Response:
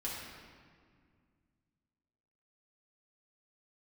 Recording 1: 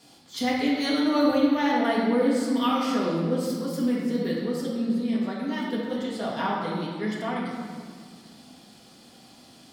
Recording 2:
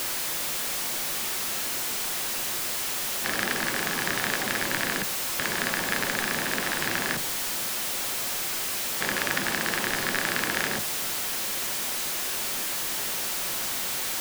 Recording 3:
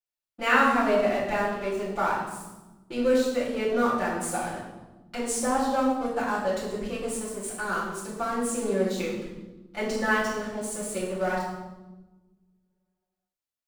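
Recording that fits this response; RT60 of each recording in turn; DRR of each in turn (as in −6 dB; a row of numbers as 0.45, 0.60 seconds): 1; 2.0, 0.40, 1.2 seconds; −6.5, 10.5, −10.0 decibels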